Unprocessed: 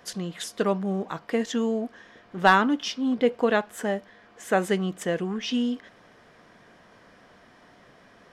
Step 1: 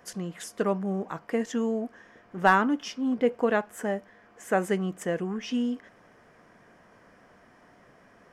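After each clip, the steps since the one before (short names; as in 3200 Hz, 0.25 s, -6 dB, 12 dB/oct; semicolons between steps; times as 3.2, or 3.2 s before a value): bell 3800 Hz -10.5 dB 0.71 oct; gain -2 dB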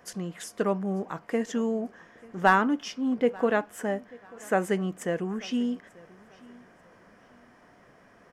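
feedback echo 0.889 s, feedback 30%, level -23.5 dB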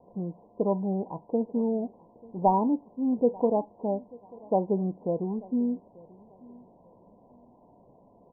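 Chebyshev low-pass 1000 Hz, order 8; gain +1 dB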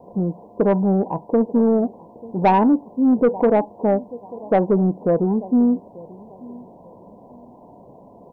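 low shelf 60 Hz -7.5 dB; in parallel at -2 dB: limiter -20 dBFS, peak gain reduction 9 dB; on the sum: soft clip -16 dBFS, distortion -16 dB; gain +7.5 dB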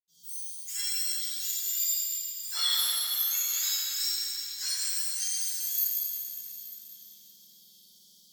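spectrum mirrored in octaves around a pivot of 1800 Hz; reverb RT60 4.1 s, pre-delay 76 ms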